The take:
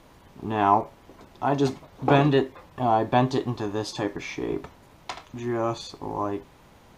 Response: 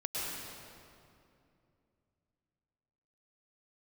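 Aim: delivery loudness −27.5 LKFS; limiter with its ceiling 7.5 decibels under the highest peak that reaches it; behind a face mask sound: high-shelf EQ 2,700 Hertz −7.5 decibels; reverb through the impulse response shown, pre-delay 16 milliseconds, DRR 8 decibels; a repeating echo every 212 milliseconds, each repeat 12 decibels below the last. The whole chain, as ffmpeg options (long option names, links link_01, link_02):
-filter_complex "[0:a]alimiter=limit=-14.5dB:level=0:latency=1,aecho=1:1:212|424|636:0.251|0.0628|0.0157,asplit=2[link_01][link_02];[1:a]atrim=start_sample=2205,adelay=16[link_03];[link_02][link_03]afir=irnorm=-1:irlink=0,volume=-12.5dB[link_04];[link_01][link_04]amix=inputs=2:normalize=0,highshelf=frequency=2700:gain=-7.5,volume=0.5dB"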